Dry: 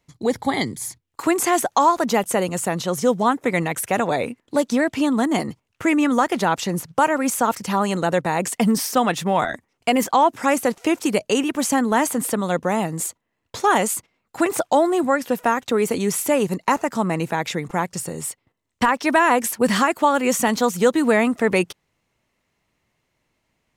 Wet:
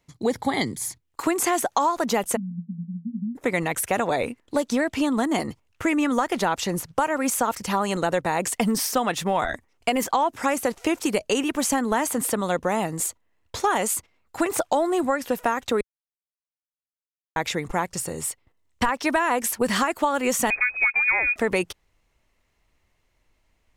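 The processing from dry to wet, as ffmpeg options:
-filter_complex "[0:a]asplit=3[a][b][c];[a]afade=t=out:st=2.35:d=0.02[d];[b]asuperpass=centerf=200:order=20:qfactor=2.7,afade=t=in:st=2.35:d=0.02,afade=t=out:st=3.35:d=0.02[e];[c]afade=t=in:st=3.35:d=0.02[f];[d][e][f]amix=inputs=3:normalize=0,asettb=1/sr,asplit=3[g][h][i];[g]atrim=end=20.504[j];[h]atrim=start=20.5:end=21.36,asetpts=PTS-STARTPTS,afade=t=in:d=0.004:c=qsin,afade=t=out:st=0.856:d=0.004:c=qsin,lowpass=f=2.3k:t=q:w=0.5098,lowpass=f=2.3k:t=q:w=0.6013,lowpass=f=2.3k:t=q:w=0.9,lowpass=f=2.3k:t=q:w=2.563,afreqshift=-2700[k];[i]atrim=start=21.356[l];[j][k]acrossfade=d=0.004:c1=hsin:c2=qsin[m];[m][l]acrossfade=d=0.004:c1=qsin:c2=hsin,asplit=3[n][o][p];[n]atrim=end=15.81,asetpts=PTS-STARTPTS,afade=t=out:st=15.806:d=0.004:c=hsin[q];[o]atrim=start=15.81:end=17.36,asetpts=PTS-STARTPTS,volume=0[r];[p]atrim=start=17.36,asetpts=PTS-STARTPTS,afade=t=in:d=0.004:c=hsin[s];[q][r][s]concat=n=3:v=0:a=1,asubboost=boost=7:cutoff=55,acompressor=threshold=-18dB:ratio=6"

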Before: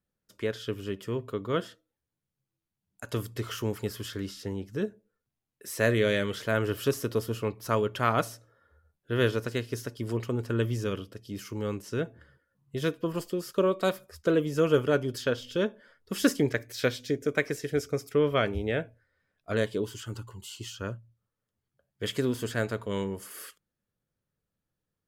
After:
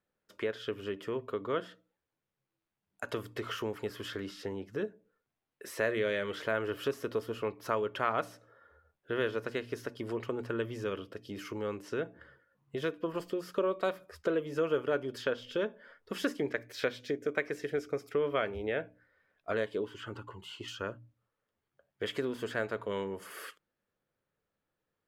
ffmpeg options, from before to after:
-filter_complex "[0:a]asettb=1/sr,asplit=3[a][b][c];[a]atrim=end=19.834[d];[b]atrim=start=19.83:end=20.68,asetpts=PTS-STARTPTS,afade=t=in:d=0.004:c=qsin,afade=t=out:st=0.846:d=0.004:c=qsin,bass=f=250:g=-1,treble=f=4k:g=-10[e];[c]atrim=start=20.676[f];[d][e]acrossfade=d=0.004:c1=hsin:c2=qsin[g];[g][f]acrossfade=d=0.004:c1=qsin:c2=hsin,bandreject=f=60:t=h:w=6,bandreject=f=120:t=h:w=6,bandreject=f=180:t=h:w=6,bandreject=f=240:t=h:w=6,bandreject=f=300:t=h:w=6,acompressor=threshold=-39dB:ratio=2,bass=f=250:g=-11,treble=f=4k:g=-13,volume=5.5dB"

